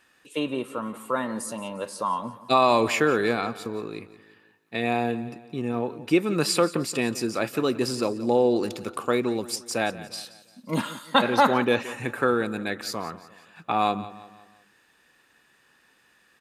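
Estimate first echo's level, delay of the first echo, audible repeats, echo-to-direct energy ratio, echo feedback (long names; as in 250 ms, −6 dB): −16.5 dB, 175 ms, 3, −15.5 dB, 45%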